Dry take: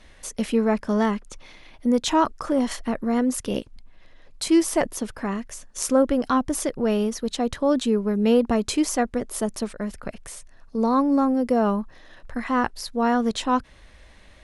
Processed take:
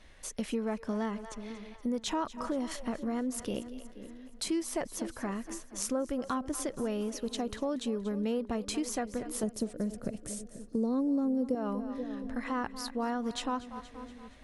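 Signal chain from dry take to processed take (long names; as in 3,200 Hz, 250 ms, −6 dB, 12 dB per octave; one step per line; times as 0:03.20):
0:09.43–0:11.55: octave-band graphic EQ 125/250/500/1,000/2,000/8,000 Hz +9/+6/+7/−8/−4/+5 dB
echo with a time of its own for lows and highs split 470 Hz, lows 486 ms, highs 236 ms, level −16 dB
downward compressor 3 to 1, threshold −25 dBFS, peak gain reduction 12 dB
level −6 dB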